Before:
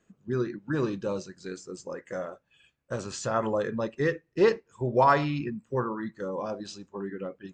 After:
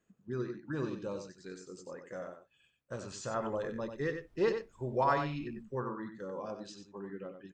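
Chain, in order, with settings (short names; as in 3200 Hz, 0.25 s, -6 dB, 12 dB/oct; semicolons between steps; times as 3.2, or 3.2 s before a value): 3.34–5.63 added noise brown -55 dBFS; echo 93 ms -8 dB; gain -8.5 dB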